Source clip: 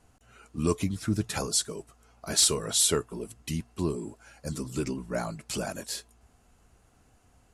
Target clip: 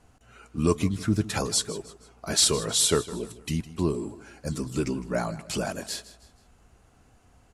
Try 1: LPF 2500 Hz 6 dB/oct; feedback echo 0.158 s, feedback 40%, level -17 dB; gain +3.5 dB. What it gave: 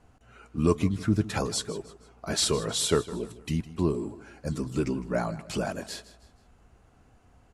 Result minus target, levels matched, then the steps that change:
8000 Hz band -4.0 dB
change: LPF 6900 Hz 6 dB/oct

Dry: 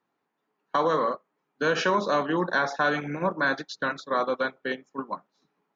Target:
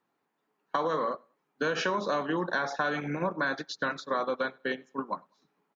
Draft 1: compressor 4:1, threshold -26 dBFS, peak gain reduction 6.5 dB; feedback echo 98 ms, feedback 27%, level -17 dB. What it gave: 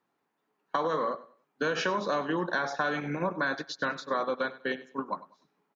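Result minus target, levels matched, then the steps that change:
echo-to-direct +10.5 dB
change: feedback echo 98 ms, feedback 27%, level -27.5 dB

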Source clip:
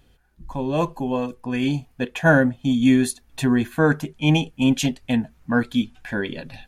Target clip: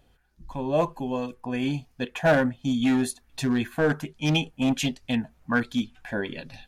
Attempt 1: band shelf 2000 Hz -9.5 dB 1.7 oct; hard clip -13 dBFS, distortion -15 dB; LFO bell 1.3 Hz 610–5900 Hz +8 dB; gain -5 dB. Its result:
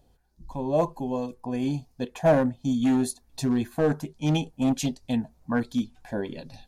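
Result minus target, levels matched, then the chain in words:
2000 Hz band -8.5 dB
hard clip -13 dBFS, distortion -14 dB; LFO bell 1.3 Hz 610–5900 Hz +8 dB; gain -5 dB

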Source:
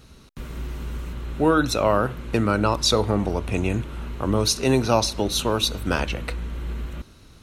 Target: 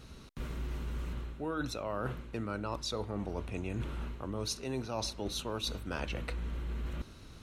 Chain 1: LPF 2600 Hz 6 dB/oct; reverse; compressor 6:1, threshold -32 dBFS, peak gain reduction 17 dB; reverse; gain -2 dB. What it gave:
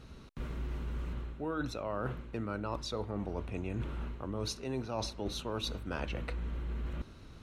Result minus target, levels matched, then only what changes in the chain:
8000 Hz band -4.0 dB
change: LPF 8000 Hz 6 dB/oct

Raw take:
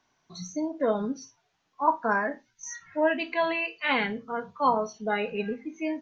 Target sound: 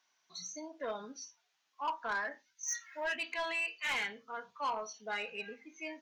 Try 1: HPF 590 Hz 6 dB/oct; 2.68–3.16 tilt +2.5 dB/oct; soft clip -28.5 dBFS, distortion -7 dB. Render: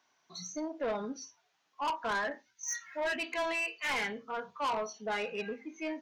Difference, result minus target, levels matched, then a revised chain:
500 Hz band +3.5 dB
HPF 2300 Hz 6 dB/oct; 2.68–3.16 tilt +2.5 dB/oct; soft clip -28.5 dBFS, distortion -12 dB

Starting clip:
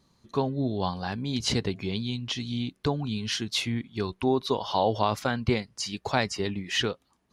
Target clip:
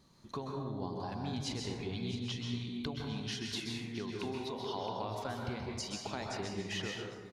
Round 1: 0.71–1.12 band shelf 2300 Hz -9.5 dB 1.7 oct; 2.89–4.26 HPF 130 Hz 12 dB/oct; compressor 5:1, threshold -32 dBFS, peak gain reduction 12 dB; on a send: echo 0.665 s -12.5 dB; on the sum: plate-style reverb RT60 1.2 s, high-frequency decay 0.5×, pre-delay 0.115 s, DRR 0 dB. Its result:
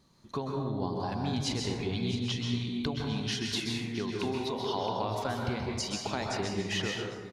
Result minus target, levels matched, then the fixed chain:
compressor: peak gain reduction -6.5 dB
0.71–1.12 band shelf 2300 Hz -9.5 dB 1.7 oct; 2.89–4.26 HPF 130 Hz 12 dB/oct; compressor 5:1, threshold -40 dBFS, peak gain reduction 18.5 dB; on a send: echo 0.665 s -12.5 dB; on the sum: plate-style reverb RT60 1.2 s, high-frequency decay 0.5×, pre-delay 0.115 s, DRR 0 dB

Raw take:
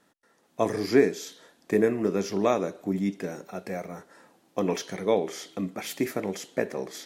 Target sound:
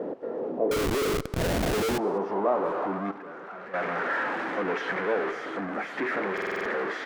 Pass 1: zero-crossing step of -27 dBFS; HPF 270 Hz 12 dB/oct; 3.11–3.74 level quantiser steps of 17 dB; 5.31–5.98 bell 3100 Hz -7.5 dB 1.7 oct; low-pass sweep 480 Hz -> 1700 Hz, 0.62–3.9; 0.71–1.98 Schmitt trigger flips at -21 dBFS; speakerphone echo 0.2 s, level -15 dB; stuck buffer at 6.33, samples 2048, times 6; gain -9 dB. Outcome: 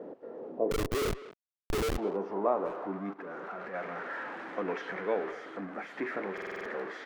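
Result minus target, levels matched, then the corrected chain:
zero-crossing step: distortion -7 dB
zero-crossing step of -16 dBFS; HPF 270 Hz 12 dB/oct; 3.11–3.74 level quantiser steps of 17 dB; 5.31–5.98 bell 3100 Hz -7.5 dB 1.7 oct; low-pass sweep 480 Hz -> 1700 Hz, 0.62–3.9; 0.71–1.98 Schmitt trigger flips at -21 dBFS; speakerphone echo 0.2 s, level -15 dB; stuck buffer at 6.33, samples 2048, times 6; gain -9 dB

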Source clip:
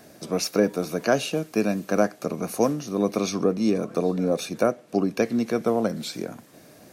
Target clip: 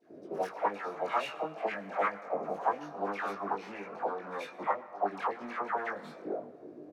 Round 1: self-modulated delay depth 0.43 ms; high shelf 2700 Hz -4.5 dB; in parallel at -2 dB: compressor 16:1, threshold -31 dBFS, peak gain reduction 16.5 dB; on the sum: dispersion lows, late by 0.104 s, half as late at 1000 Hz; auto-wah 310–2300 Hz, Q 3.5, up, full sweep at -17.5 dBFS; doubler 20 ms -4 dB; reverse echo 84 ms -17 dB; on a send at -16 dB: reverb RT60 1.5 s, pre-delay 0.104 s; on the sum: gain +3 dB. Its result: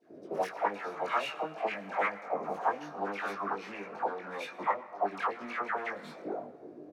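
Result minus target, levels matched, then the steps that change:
compressor: peak gain reduction -9 dB
change: compressor 16:1, threshold -40.5 dBFS, peak gain reduction 25.5 dB

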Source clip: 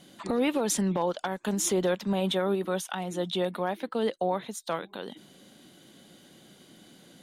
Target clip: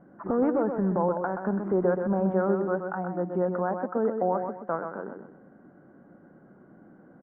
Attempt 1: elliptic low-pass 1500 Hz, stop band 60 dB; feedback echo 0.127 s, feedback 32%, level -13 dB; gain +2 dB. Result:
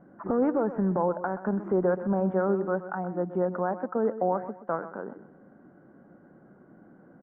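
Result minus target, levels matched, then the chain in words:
echo-to-direct -6.5 dB
elliptic low-pass 1500 Hz, stop band 60 dB; feedback echo 0.127 s, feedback 32%, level -6.5 dB; gain +2 dB

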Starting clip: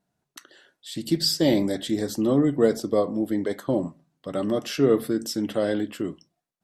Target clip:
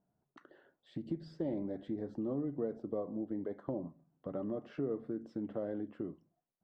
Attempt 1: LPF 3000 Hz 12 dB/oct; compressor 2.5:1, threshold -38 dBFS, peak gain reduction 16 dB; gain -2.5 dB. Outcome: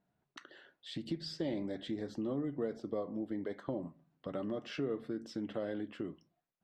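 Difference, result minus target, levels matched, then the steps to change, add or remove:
4000 Hz band +17.5 dB
change: LPF 990 Hz 12 dB/oct

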